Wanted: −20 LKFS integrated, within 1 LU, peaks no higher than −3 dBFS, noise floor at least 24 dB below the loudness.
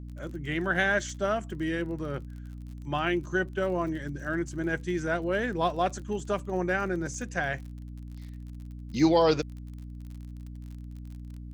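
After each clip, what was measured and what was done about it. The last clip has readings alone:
crackle rate 38 per second; mains hum 60 Hz; hum harmonics up to 300 Hz; level of the hum −38 dBFS; integrated loudness −29.0 LKFS; sample peak −11.0 dBFS; target loudness −20.0 LKFS
→ click removal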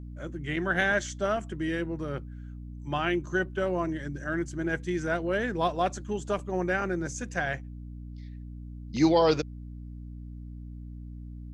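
crackle rate 0 per second; mains hum 60 Hz; hum harmonics up to 300 Hz; level of the hum −38 dBFS
→ mains-hum notches 60/120/180/240/300 Hz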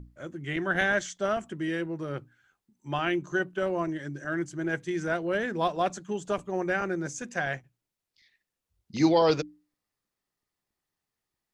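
mains hum none found; integrated loudness −29.5 LKFS; sample peak −10.5 dBFS; target loudness −20.0 LKFS
→ level +9.5 dB
brickwall limiter −3 dBFS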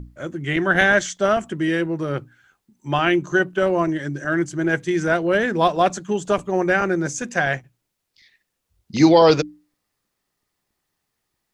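integrated loudness −20.0 LKFS; sample peak −3.0 dBFS; background noise floor −78 dBFS

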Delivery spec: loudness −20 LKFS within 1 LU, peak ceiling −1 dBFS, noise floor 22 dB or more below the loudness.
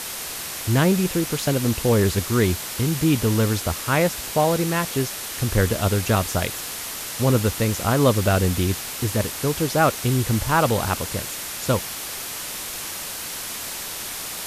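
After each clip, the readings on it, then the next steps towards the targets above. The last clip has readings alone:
background noise floor −32 dBFS; target noise floor −45 dBFS; integrated loudness −22.5 LKFS; sample peak −6.0 dBFS; target loudness −20.0 LKFS
→ broadband denoise 13 dB, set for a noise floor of −32 dBFS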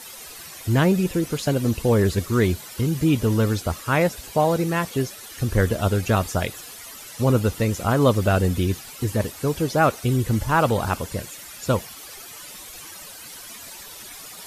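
background noise floor −40 dBFS; target noise floor −45 dBFS
→ broadband denoise 6 dB, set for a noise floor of −40 dBFS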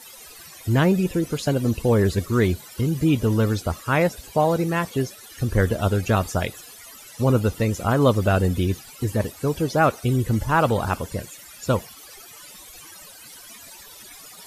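background noise floor −44 dBFS; target noise floor −45 dBFS
→ broadband denoise 6 dB, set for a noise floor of −44 dBFS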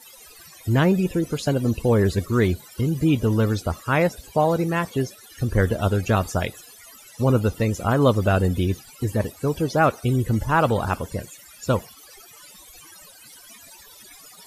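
background noise floor −47 dBFS; integrated loudness −22.5 LKFS; sample peak −6.5 dBFS; target loudness −20.0 LKFS
→ level +2.5 dB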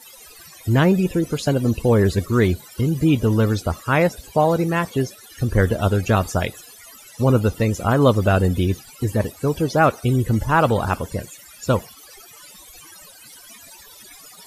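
integrated loudness −20.0 LKFS; sample peak −4.0 dBFS; background noise floor −45 dBFS

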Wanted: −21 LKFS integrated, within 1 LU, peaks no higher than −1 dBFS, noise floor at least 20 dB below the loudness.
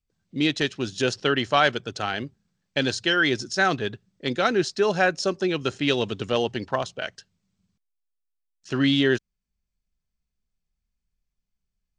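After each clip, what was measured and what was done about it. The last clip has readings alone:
integrated loudness −24.5 LKFS; sample peak −5.5 dBFS; target loudness −21.0 LKFS
→ level +3.5 dB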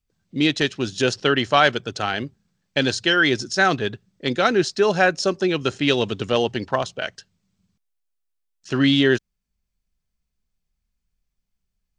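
integrated loudness −21.0 LKFS; sample peak −2.0 dBFS; background noise floor −78 dBFS

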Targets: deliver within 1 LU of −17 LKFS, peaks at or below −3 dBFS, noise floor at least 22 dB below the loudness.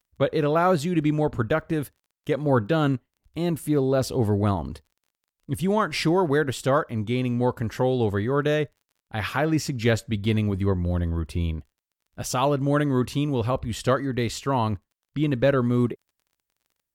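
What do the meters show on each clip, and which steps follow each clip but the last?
crackle rate 28 per second; integrated loudness −24.5 LKFS; sample peak −9.0 dBFS; target loudness −17.0 LKFS
→ click removal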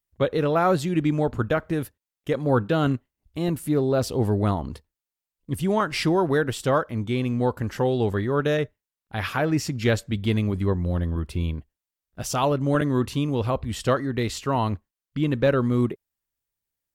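crackle rate 0 per second; integrated loudness −24.5 LKFS; sample peak −9.0 dBFS; target loudness −17.0 LKFS
→ level +7.5 dB
brickwall limiter −3 dBFS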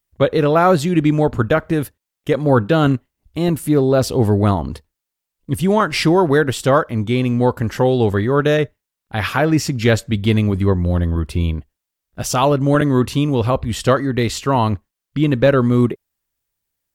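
integrated loudness −17.0 LKFS; sample peak −3.0 dBFS; background noise floor −82 dBFS

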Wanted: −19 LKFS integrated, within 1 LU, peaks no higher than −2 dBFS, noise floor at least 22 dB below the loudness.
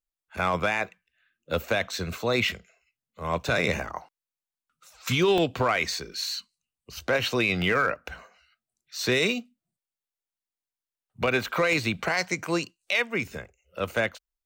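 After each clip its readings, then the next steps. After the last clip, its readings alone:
share of clipped samples 0.2%; peaks flattened at −15.5 dBFS; number of dropouts 4; longest dropout 1.3 ms; integrated loudness −26.5 LKFS; sample peak −15.5 dBFS; target loudness −19.0 LKFS
→ clipped peaks rebuilt −15.5 dBFS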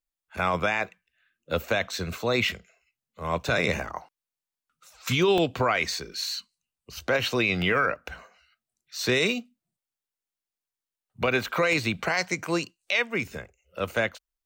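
share of clipped samples 0.0%; number of dropouts 4; longest dropout 1.3 ms
→ repair the gap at 0:05.38/0:05.93/0:07.62/0:11.73, 1.3 ms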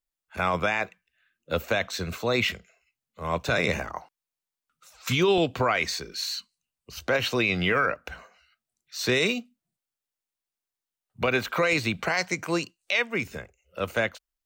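number of dropouts 0; integrated loudness −26.5 LKFS; sample peak −10.5 dBFS; target loudness −19.0 LKFS
→ level +7.5 dB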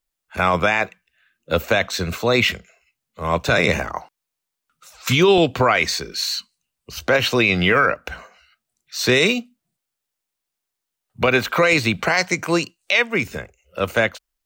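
integrated loudness −19.0 LKFS; sample peak −3.0 dBFS; background noise floor −82 dBFS

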